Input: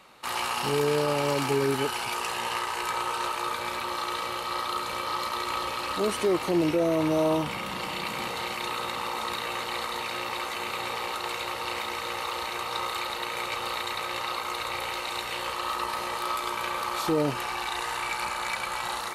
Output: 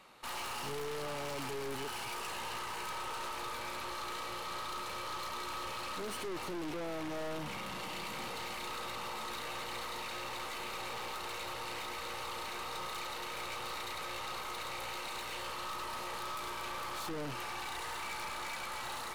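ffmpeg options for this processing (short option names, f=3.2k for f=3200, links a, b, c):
-af "aeval=exprs='(tanh(56.2*val(0)+0.5)-tanh(0.5))/56.2':c=same,volume=-3dB"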